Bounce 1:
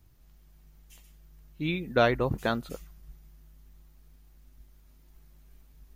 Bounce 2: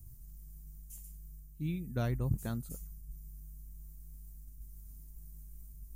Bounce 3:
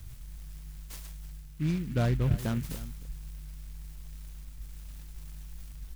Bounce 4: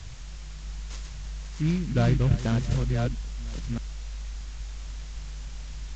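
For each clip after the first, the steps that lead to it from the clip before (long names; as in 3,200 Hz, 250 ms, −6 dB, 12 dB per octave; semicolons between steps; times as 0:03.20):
drawn EQ curve 130 Hz 0 dB, 490 Hz −18 dB, 3,600 Hz −20 dB, 8,400 Hz +4 dB; reversed playback; upward compression, threshold −42 dBFS; reversed playback; level +1 dB
soft clipping −21.5 dBFS, distortion −21 dB; single-tap delay 307 ms −15.5 dB; short delay modulated by noise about 2,000 Hz, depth 0.05 ms; level +7 dB
delay that plays each chunk backwards 630 ms, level −4 dB; background noise white −52 dBFS; downsampling to 16,000 Hz; level +4 dB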